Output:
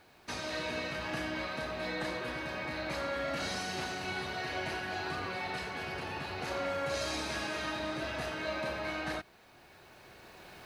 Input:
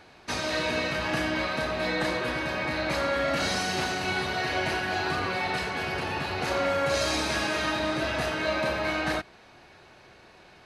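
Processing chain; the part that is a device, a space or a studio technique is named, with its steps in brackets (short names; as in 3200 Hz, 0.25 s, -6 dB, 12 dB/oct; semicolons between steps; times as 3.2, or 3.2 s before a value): cheap recorder with automatic gain (white noise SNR 38 dB; recorder AGC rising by 7.4 dB/s); gain -8.5 dB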